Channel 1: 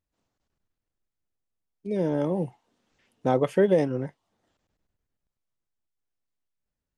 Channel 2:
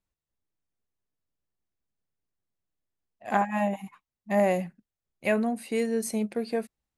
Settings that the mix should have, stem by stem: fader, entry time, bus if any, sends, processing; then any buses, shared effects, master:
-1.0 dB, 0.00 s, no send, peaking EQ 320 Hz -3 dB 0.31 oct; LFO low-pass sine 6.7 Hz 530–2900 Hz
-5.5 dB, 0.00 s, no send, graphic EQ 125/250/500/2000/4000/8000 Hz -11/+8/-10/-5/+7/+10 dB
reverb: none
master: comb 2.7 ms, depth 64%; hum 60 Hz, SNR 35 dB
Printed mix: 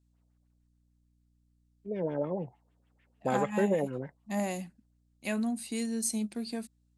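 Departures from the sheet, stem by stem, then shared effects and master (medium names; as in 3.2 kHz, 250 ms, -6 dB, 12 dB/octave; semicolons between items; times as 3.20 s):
stem 1 -1.0 dB -> -8.5 dB; master: missing comb 2.7 ms, depth 64%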